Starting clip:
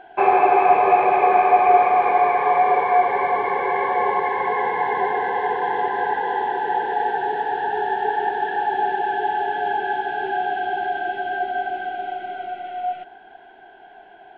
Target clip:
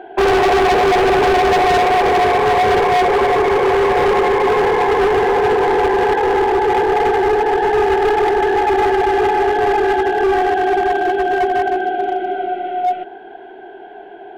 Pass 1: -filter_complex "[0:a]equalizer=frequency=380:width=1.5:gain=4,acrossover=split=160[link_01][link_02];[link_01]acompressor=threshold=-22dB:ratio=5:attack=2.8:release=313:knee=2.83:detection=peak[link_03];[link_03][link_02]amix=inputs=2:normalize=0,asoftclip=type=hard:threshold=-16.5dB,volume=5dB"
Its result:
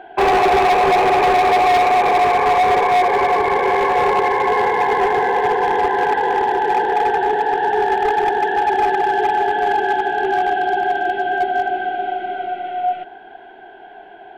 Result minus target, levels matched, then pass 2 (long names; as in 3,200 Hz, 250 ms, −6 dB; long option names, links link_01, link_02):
500 Hz band −3.0 dB
-filter_complex "[0:a]equalizer=frequency=380:width=1.5:gain=14,acrossover=split=160[link_01][link_02];[link_01]acompressor=threshold=-22dB:ratio=5:attack=2.8:release=313:knee=2.83:detection=peak[link_03];[link_03][link_02]amix=inputs=2:normalize=0,asoftclip=type=hard:threshold=-16.5dB,volume=5dB"